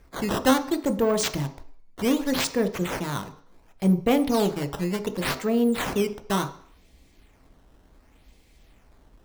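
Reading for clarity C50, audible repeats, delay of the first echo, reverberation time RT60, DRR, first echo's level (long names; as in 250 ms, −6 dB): 14.0 dB, no echo audible, no echo audible, 0.55 s, 8.0 dB, no echo audible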